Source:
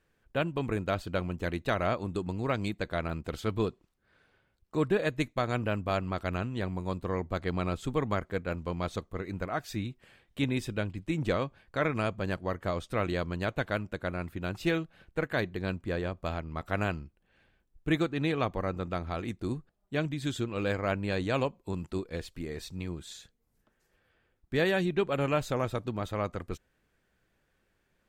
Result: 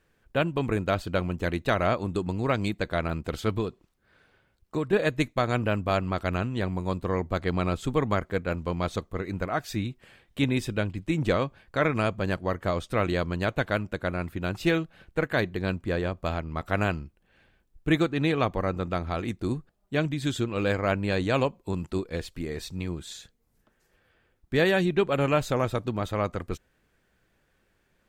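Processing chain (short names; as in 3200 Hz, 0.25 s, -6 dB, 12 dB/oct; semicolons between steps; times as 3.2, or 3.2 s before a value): 3.58–4.93 compressor, threshold -29 dBFS, peak gain reduction 7.5 dB; gain +4.5 dB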